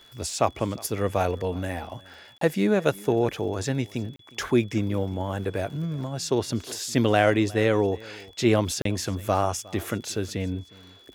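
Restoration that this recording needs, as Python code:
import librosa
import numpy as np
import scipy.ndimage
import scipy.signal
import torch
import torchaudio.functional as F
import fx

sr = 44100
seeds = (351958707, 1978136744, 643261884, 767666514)

y = fx.fix_declick_ar(x, sr, threshold=6.5)
y = fx.notch(y, sr, hz=3400.0, q=30.0)
y = fx.fix_interpolate(y, sr, at_s=(2.38, 4.16, 8.82), length_ms=33.0)
y = fx.fix_echo_inverse(y, sr, delay_ms=360, level_db=-22.5)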